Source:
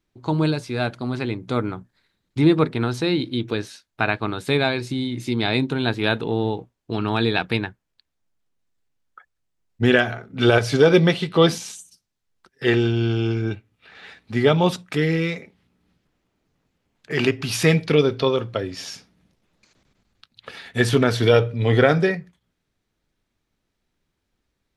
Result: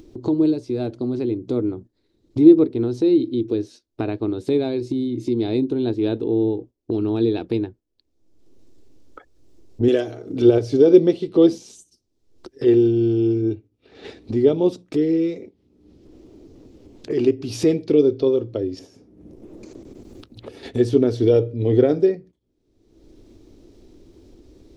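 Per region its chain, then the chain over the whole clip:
9.88–10.42 s: tone controls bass -6 dB, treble +10 dB + comb 6.4 ms, depth 44% + swell ahead of each attack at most 130 dB/s
18.79–20.63 s: peaking EQ 4.3 kHz -12.5 dB 1.6 oct + three bands compressed up and down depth 70%
whole clip: gate -41 dBFS, range -8 dB; FFT filter 110 Hz 0 dB, 160 Hz -9 dB, 330 Hz +10 dB, 790 Hz -9 dB, 1.6 kHz -19 dB, 5.4 kHz -7 dB, 12 kHz -16 dB; upward compressor, threshold -17 dBFS; trim -2 dB

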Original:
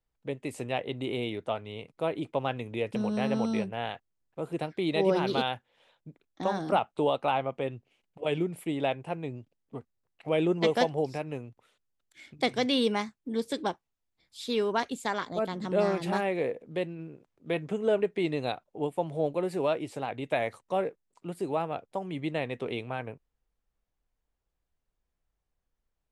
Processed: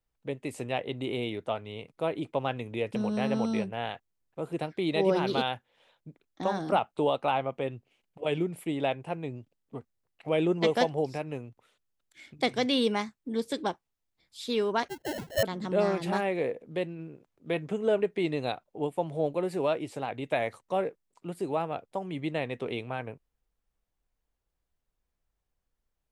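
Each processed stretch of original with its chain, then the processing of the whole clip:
14.88–15.43 s: formants replaced by sine waves + gate -58 dBFS, range -10 dB + sample-rate reducer 1.2 kHz
whole clip: none

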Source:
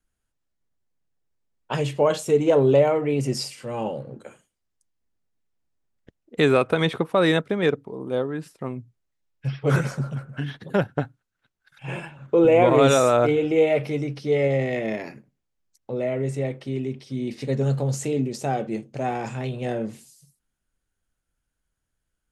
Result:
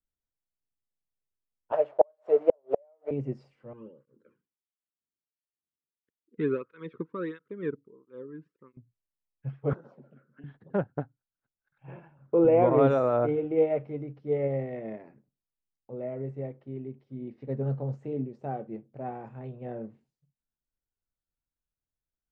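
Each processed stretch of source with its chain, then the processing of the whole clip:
1.72–3.11 s: send-on-delta sampling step -34 dBFS + resonant high-pass 610 Hz, resonance Q 6.4 + inverted gate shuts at -4 dBFS, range -38 dB
3.73–8.77 s: Butterworth band-stop 720 Hz, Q 1.1 + cancelling through-zero flanger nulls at 1.5 Hz, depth 1.8 ms
9.73–10.44 s: high-pass 220 Hz 24 dB/octave + touch-sensitive phaser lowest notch 570 Hz, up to 2.3 kHz, full sweep at -25 dBFS + compression 4:1, threshold -31 dBFS
whole clip: low-pass 1.2 kHz 12 dB/octave; upward expansion 1.5:1, over -35 dBFS; trim -3 dB

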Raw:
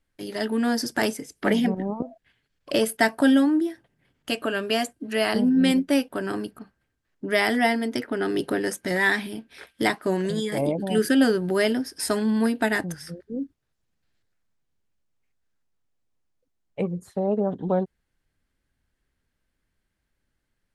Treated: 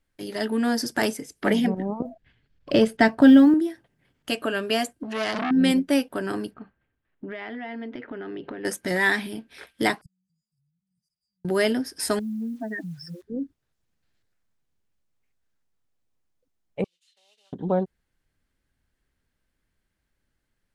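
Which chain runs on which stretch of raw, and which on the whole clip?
2.05–3.54 s: low-pass 5.1 kHz + bass shelf 260 Hz +12 dB + short-mantissa float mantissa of 6-bit
5.03–5.51 s: low-pass 6.9 kHz + upward compressor, threshold -26 dBFS + transformer saturation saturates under 2.2 kHz
6.54–8.65 s: low-pass 3.2 kHz 24 dB/octave + compression 16:1, threshold -31 dBFS
10.01–11.45 s: inverted gate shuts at -26 dBFS, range -41 dB + brick-wall FIR band-stop 180–4600 Hz + distance through air 74 m
12.19–13.23 s: spectral contrast enhancement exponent 3 + compression 2.5:1, threshold -32 dBFS + word length cut 10-bit, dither none
16.84–17.53 s: CVSD coder 64 kbps + ladder band-pass 3.4 kHz, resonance 80% + band-stop 3.3 kHz, Q 6.9
whole clip: none

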